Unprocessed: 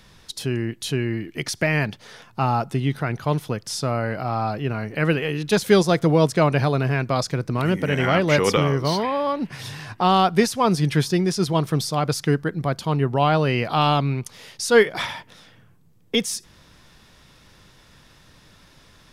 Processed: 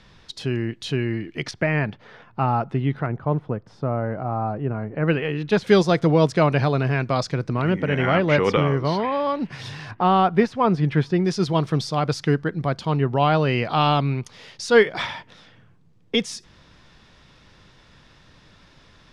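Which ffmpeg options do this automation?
-af "asetnsamples=n=441:p=0,asendcmd='1.51 lowpass f 2200;3.06 lowpass f 1100;5.08 lowpass f 2900;5.67 lowpass f 5300;7.53 lowpass f 3000;9.12 lowpass f 5400;9.91 lowpass f 2200;11.25 lowpass f 5100',lowpass=4.6k"

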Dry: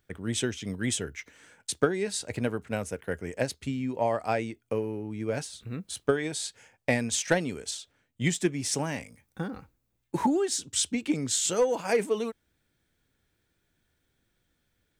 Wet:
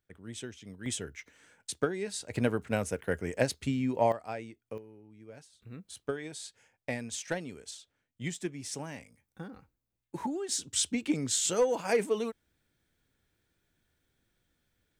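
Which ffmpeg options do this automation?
-af "asetnsamples=n=441:p=0,asendcmd='0.86 volume volume -5.5dB;2.35 volume volume 1dB;4.12 volume volume -10.5dB;4.78 volume volume -19dB;5.62 volume volume -9.5dB;10.49 volume volume -2dB',volume=-12.5dB"

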